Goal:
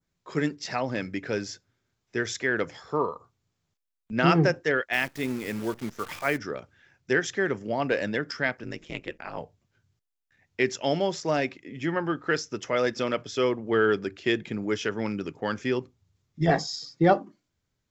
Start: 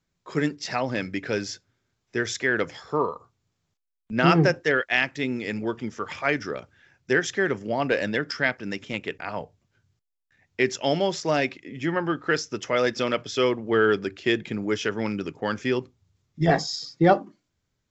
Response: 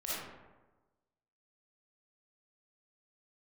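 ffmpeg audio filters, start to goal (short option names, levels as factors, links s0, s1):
-filter_complex "[0:a]asplit=3[s0][s1][s2];[s0]afade=t=out:st=4.92:d=0.02[s3];[s1]acrusher=bits=7:dc=4:mix=0:aa=0.000001,afade=t=in:st=4.92:d=0.02,afade=t=out:st=6.36:d=0.02[s4];[s2]afade=t=in:st=6.36:d=0.02[s5];[s3][s4][s5]amix=inputs=3:normalize=0,asettb=1/sr,asplit=3[s6][s7][s8];[s6]atrim=end=8.634[s9];[s7]atrim=start=8.63:end=9.38,asetpts=PTS-STARTPTS,afade=t=in:d=0.004:c=qsin,afade=t=out:st=0.746:d=0.004:c=qsin,aeval=exprs='val(0)*sin(2*PI*77*n/s)':c=same[s10];[s8]atrim=start=9.376[s11];[s9][s10]acrossfade=d=0.004:c1=hsin:c2=qsin[s12];[s12][s11]acrossfade=d=0.004:c1=qsin:c2=hsin,adynamicequalizer=threshold=0.00891:dfrequency=3300:dqfactor=0.77:tfrequency=3300:tqfactor=0.77:attack=5:release=100:ratio=0.375:range=2:mode=cutabove:tftype=bell,volume=0.794"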